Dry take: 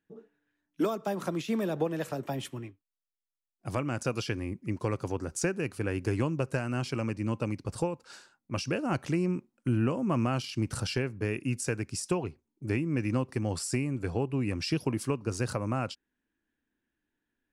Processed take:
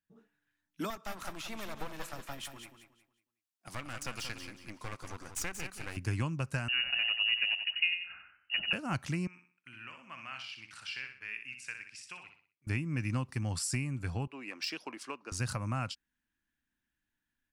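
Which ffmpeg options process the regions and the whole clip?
ffmpeg -i in.wav -filter_complex "[0:a]asettb=1/sr,asplit=3[link_01][link_02][link_03];[link_01]atrim=end=0.904[link_04];[link_02]atrim=start=0.9:end=5.97,asetpts=PTS-STARTPTS,afade=type=in:duration=0.004:curve=qsin,afade=type=out:start_time=5.066:duration=0.004:curve=qsin,highpass=340,aeval=exprs='clip(val(0),-1,0.00891)':channel_layout=same,aecho=1:1:182|364|546|728:0.376|0.113|0.0338|0.0101,atrim=end_sample=223587[link_05];[link_03]atrim=start=5.966[link_06];[link_04][link_05]acrossfade=duration=0.004:curve1=hsin:curve2=qsin[link_07];[link_07][link_06]acrossfade=duration=0.004:curve1=qsin:curve2=hsin,asettb=1/sr,asplit=3[link_08][link_09][link_10];[link_08]atrim=end=6.684[link_11];[link_09]atrim=start=6.68:end=8.73,asetpts=PTS-STARTPTS,afade=type=in:duration=0.004:curve=qsin,afade=type=out:start_time=2.046:duration=0.004:curve=qsin,lowpass=frequency=2600:width_type=q:width=0.5098,lowpass=frequency=2600:width_type=q:width=0.6013,lowpass=frequency=2600:width_type=q:width=0.9,lowpass=frequency=2600:width_type=q:width=2.563,afreqshift=-3000,aecho=1:1:91|182|273|364:0.422|0.164|0.0641|0.025,atrim=end_sample=90405[link_12];[link_10]atrim=start=8.726[link_13];[link_11][link_12]acrossfade=duration=0.004:curve1=hsin:curve2=qsin[link_14];[link_14][link_13]acrossfade=duration=0.004:curve1=qsin:curve2=hsin,asettb=1/sr,asplit=3[link_15][link_16][link_17];[link_15]atrim=end=9.274[link_18];[link_16]atrim=start=9.27:end=12.67,asetpts=PTS-STARTPTS,afade=type=in:duration=0.004:curve=qsin,afade=type=out:start_time=3.396:duration=0.004:curve=qsin,bandpass=frequency=2300:width_type=q:width=1.9,aecho=1:1:62|124|186|248:0.422|0.164|0.0641|0.025,atrim=end_sample=149940[link_19];[link_17]atrim=start=12.666[link_20];[link_18][link_19]acrossfade=duration=0.004:curve1=hsin:curve2=qsin[link_21];[link_21][link_20]acrossfade=duration=0.004:curve1=qsin:curve2=hsin,asettb=1/sr,asplit=3[link_22][link_23][link_24];[link_22]atrim=end=14.274[link_25];[link_23]atrim=start=14.27:end=15.32,asetpts=PTS-STARTPTS,afade=type=in:duration=0.004:curve=qsin,afade=type=out:start_time=1.046:duration=0.004:curve=qsin,highpass=frequency=330:width=0.5412,highpass=frequency=330:width=1.3066,adynamicsmooth=sensitivity=4.5:basefreq=4900[link_26];[link_24]atrim=start=15.316[link_27];[link_25][link_26]acrossfade=duration=0.004:curve1=hsin:curve2=qsin[link_28];[link_28][link_27]acrossfade=duration=0.004:curve1=qsin:curve2=hsin,equalizer=frequency=420:width_type=o:width=1.5:gain=-14.5,dynaudnorm=framelen=110:gausssize=3:maxgain=7.5dB,volume=-7dB" out.wav

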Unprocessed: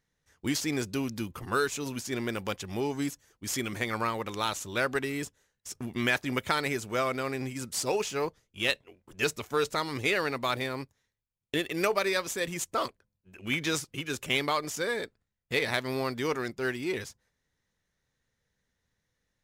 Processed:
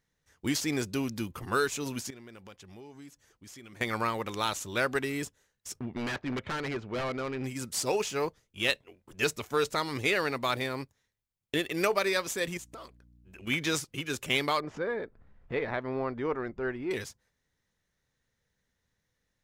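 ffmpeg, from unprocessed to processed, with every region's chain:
ffmpeg -i in.wav -filter_complex "[0:a]asettb=1/sr,asplit=3[link_01][link_02][link_03];[link_01]atrim=end=2.104[link_04];[link_02]atrim=start=2.1:end=3.81,asetpts=PTS-STARTPTS,afade=type=in:duration=0.004:curve=qsin,afade=type=out:start_time=1.706:duration=0.004:curve=qsin,highshelf=frequency=9300:gain=-6,acompressor=threshold=-54dB:ratio=2.5:attack=3.2:release=140:knee=1:detection=peak[link_05];[link_03]atrim=start=3.806[link_06];[link_04][link_05]acrossfade=duration=0.004:curve1=hsin:curve2=qsin[link_07];[link_07][link_06]acrossfade=duration=0.004:curve1=qsin:curve2=hsin,asettb=1/sr,asplit=3[link_08][link_09][link_10];[link_08]atrim=end=5.794[link_11];[link_09]atrim=start=5.79:end=7.44,asetpts=PTS-STARTPTS,afade=type=in:duration=0.004:curve=qsin,afade=type=out:start_time=1.646:duration=0.004:curve=qsin,lowpass=4500,aeval=exprs='0.0473*(abs(mod(val(0)/0.0473+3,4)-2)-1)':channel_layout=same,adynamicsmooth=sensitivity=3.5:basefreq=2500[link_12];[link_10]atrim=start=7.436[link_13];[link_11][link_12]acrossfade=duration=0.004:curve1=hsin:curve2=qsin[link_14];[link_14][link_13]acrossfade=duration=0.004:curve1=qsin:curve2=hsin,asettb=1/sr,asplit=3[link_15][link_16][link_17];[link_15]atrim=end=12.574[link_18];[link_16]atrim=start=12.57:end=13.47,asetpts=PTS-STARTPTS,afade=type=in:duration=0.004:curve=qsin,afade=type=out:start_time=0.896:duration=0.004:curve=qsin,acompressor=threshold=-43dB:ratio=6:attack=3.2:release=140:knee=1:detection=peak,aeval=exprs='val(0)+0.00126*(sin(2*PI*60*n/s)+sin(2*PI*2*60*n/s)/2+sin(2*PI*3*60*n/s)/3+sin(2*PI*4*60*n/s)/4+sin(2*PI*5*60*n/s)/5)':channel_layout=same[link_19];[link_17]atrim=start=13.466[link_20];[link_18][link_19]acrossfade=duration=0.004:curve1=hsin:curve2=qsin[link_21];[link_21][link_20]acrossfade=duration=0.004:curve1=qsin:curve2=hsin,asettb=1/sr,asplit=3[link_22][link_23][link_24];[link_22]atrim=end=14.604[link_25];[link_23]atrim=start=14.6:end=16.91,asetpts=PTS-STARTPTS,afade=type=in:duration=0.004:curve=qsin,afade=type=out:start_time=2.306:duration=0.004:curve=qsin,lowpass=1400,asubboost=boost=9.5:cutoff=52,acompressor=mode=upward:threshold=-35dB:ratio=2.5:attack=3.2:release=140:knee=2.83:detection=peak[link_26];[link_24]atrim=start=16.906[link_27];[link_25][link_26]acrossfade=duration=0.004:curve1=hsin:curve2=qsin[link_28];[link_28][link_27]acrossfade=duration=0.004:curve1=qsin:curve2=hsin" out.wav

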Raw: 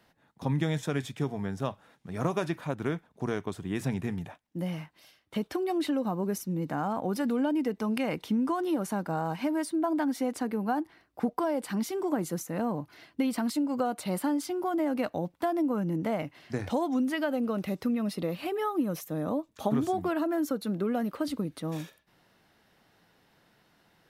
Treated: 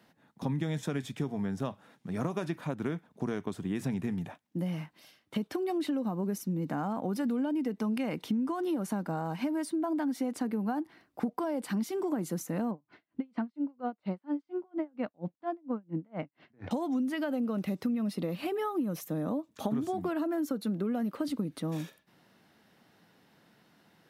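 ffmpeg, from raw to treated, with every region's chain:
ffmpeg -i in.wav -filter_complex "[0:a]asettb=1/sr,asplit=3[link_01][link_02][link_03];[link_01]atrim=end=12.714[link_04];[link_02]atrim=start=12.71:end=16.71,asetpts=PTS-STARTPTS,afade=type=in:duration=0.004:curve=qsin,afade=type=out:start_time=3.996:duration=0.004:curve=qsin,lowpass=2600,aeval=exprs='val(0)*pow(10,-39*(0.5-0.5*cos(2*PI*4.3*n/s))/20)':channel_layout=same[link_05];[link_03]atrim=start=16.706[link_06];[link_04][link_05]acrossfade=duration=0.004:curve1=hsin:curve2=qsin[link_07];[link_07][link_06]acrossfade=duration=0.004:curve1=qsin:curve2=hsin,highpass=93,equalizer=frequency=220:width=1.3:gain=5.5,acompressor=threshold=-30dB:ratio=3" out.wav

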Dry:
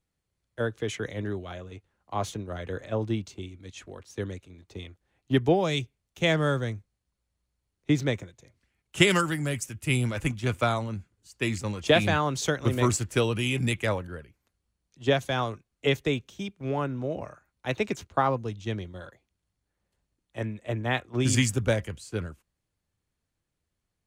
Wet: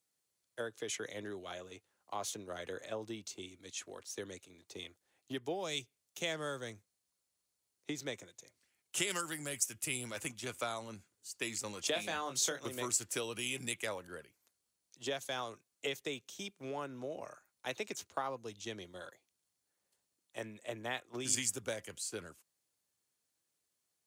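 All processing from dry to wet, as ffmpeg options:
ffmpeg -i in.wav -filter_complex "[0:a]asettb=1/sr,asplit=3[link_01][link_02][link_03];[link_01]atrim=end=11.914[link_04];[link_02]atrim=start=11.91:end=12.6,asetpts=PTS-STARTPTS,afade=type=in:duration=0.004:curve=qsin,afade=type=out:start_time=0.686:duration=0.004:curve=qsin,bandreject=frequency=50:width_type=h:width=6,bandreject=frequency=100:width_type=h:width=6,bandreject=frequency=150:width_type=h:width=6,bandreject=frequency=200:width_type=h:width=6,asplit=2[link_05][link_06];[link_06]adelay=24,volume=-8dB[link_07];[link_05][link_07]amix=inputs=2:normalize=0,atrim=end_sample=30429[link_08];[link_03]atrim=start=12.596[link_09];[link_04][link_08]acrossfade=duration=0.004:curve1=hsin:curve2=qsin[link_10];[link_10][link_09]acrossfade=duration=0.004:curve1=qsin:curve2=hsin,highpass=110,acompressor=threshold=-34dB:ratio=2.5,bass=frequency=250:gain=-11,treble=frequency=4000:gain=11,volume=-4dB" out.wav

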